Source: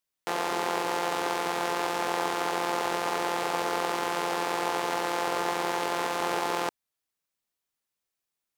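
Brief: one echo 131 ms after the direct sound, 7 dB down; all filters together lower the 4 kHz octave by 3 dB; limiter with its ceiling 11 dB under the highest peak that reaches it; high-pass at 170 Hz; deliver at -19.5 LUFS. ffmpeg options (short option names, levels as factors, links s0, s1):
-af "highpass=170,equalizer=f=4000:t=o:g=-4,alimiter=level_in=1.06:limit=0.0631:level=0:latency=1,volume=0.944,aecho=1:1:131:0.447,volume=6.68"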